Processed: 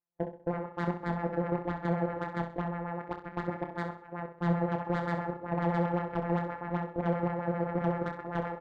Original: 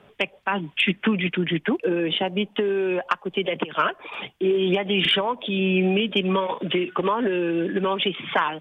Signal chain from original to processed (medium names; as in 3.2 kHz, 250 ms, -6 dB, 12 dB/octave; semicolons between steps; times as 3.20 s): sorted samples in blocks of 256 samples; gate -43 dBFS, range -11 dB; peaking EQ 110 Hz -12.5 dB 1.2 oct; compression 2.5:1, threshold -26 dBFS, peak gain reduction 7 dB; LFO low-pass sine 7.7 Hz 500–2000 Hz; level held to a coarse grid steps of 9 dB; waveshaping leveller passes 1; one-sided clip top -30.5 dBFS, bottom -17 dBFS; doubling 28 ms -7.5 dB; feedback delay 65 ms, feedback 50%, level -7 dB; spectral contrast expander 1.5:1; trim -2 dB